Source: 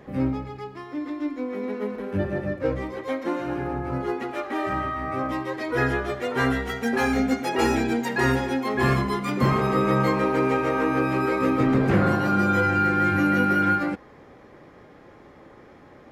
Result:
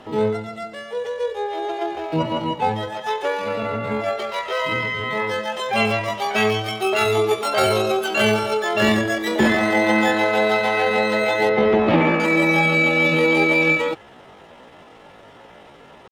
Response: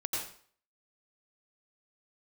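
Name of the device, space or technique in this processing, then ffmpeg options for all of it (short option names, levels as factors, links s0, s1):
chipmunk voice: -filter_complex "[0:a]lowpass=11000,asetrate=72056,aresample=44100,atempo=0.612027,asettb=1/sr,asplit=3[s0][s1][s2];[s0]atrim=end=11.494[s3];[s1]atrim=start=11.49:end=12.2,asetpts=PTS-STARTPTS,afade=t=in:d=0.004:c=qsin,afade=t=out:st=0.706:d=0.004:c=qsin,lowpass=3000[s4];[s2]atrim=start=12.196[s5];[s3][s4]acrossfade=d=0.004:c1=hsin:c2=qsin[s6];[s6][s5]acrossfade=d=0.004:c1=qsin:c2=hsin,volume=1.58"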